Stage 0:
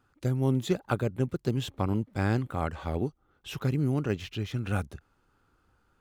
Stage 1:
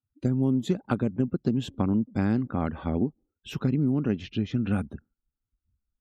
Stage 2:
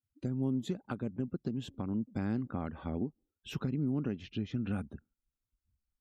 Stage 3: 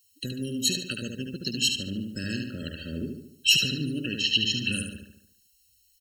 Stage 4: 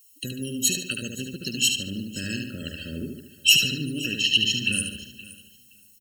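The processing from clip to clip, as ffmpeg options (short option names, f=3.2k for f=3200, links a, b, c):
-af "afftdn=nr=35:nf=-52,equalizer=f=230:t=o:w=0.99:g=13,acompressor=threshold=-21dB:ratio=4"
-af "alimiter=limit=-19.5dB:level=0:latency=1:release=468,volume=-4.5dB"
-filter_complex "[0:a]aexciter=amount=13.5:drive=9.9:freq=2.2k,asplit=2[a][b];[b]adelay=73,lowpass=f=5k:p=1,volume=-4dB,asplit=2[c][d];[d]adelay=73,lowpass=f=5k:p=1,volume=0.51,asplit=2[e][f];[f]adelay=73,lowpass=f=5k:p=1,volume=0.51,asplit=2[g][h];[h]adelay=73,lowpass=f=5k:p=1,volume=0.51,asplit=2[i][j];[j]adelay=73,lowpass=f=5k:p=1,volume=0.51,asplit=2[k][l];[l]adelay=73,lowpass=f=5k:p=1,volume=0.51,asplit=2[m][n];[n]adelay=73,lowpass=f=5k:p=1,volume=0.51[o];[c][e][g][i][k][m][o]amix=inputs=7:normalize=0[p];[a][p]amix=inputs=2:normalize=0,afftfilt=real='re*eq(mod(floor(b*sr/1024/640),2),0)':imag='im*eq(mod(floor(b*sr/1024/640),2),0)':win_size=1024:overlap=0.75"
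-af "aexciter=amount=1.2:drive=7:freq=2.3k,aecho=1:1:521|1042:0.112|0.018"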